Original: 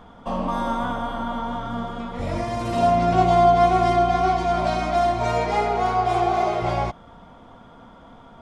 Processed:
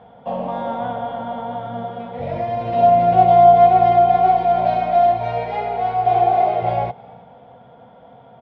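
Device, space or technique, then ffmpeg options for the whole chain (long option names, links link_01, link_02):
frequency-shifting delay pedal into a guitar cabinet: -filter_complex "[0:a]asettb=1/sr,asplit=3[link_01][link_02][link_03];[link_01]atrim=end=5.174[link_04];[link_02]atrim=start=5.17:end=6.06,asetpts=PTS-STARTPTS,afade=type=in:duration=0.004:curve=qsin,afade=type=out:start_time=0.886:duration=0.004:curve=qsin,equalizer=frequency=420:width=0.41:gain=-5.5[link_05];[link_03]atrim=start=6.056[link_06];[link_04][link_05]acrossfade=duration=0.004:curve1=hsin:curve2=qsin[link_07];[link_07][link_06]acrossfade=duration=0.004:curve1=qsin:curve2=hsin,asplit=3[link_08][link_09][link_10];[link_09]adelay=315,afreqshift=60,volume=-24dB[link_11];[link_10]adelay=630,afreqshift=120,volume=-33.1dB[link_12];[link_08][link_11][link_12]amix=inputs=3:normalize=0,highpass=99,equalizer=frequency=130:width_type=q:width=4:gain=8,equalizer=frequency=310:width_type=q:width=4:gain=-8,equalizer=frequency=500:width_type=q:width=4:gain=9,equalizer=frequency=730:width_type=q:width=4:gain=9,equalizer=frequency=1200:width_type=q:width=4:gain=-9,lowpass=frequency=3500:width=0.5412,lowpass=frequency=3500:width=1.3066,volume=-2dB"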